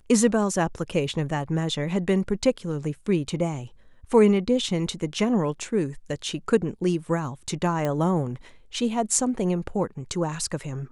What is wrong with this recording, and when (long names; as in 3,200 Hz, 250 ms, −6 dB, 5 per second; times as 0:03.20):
0:07.85: click −14 dBFS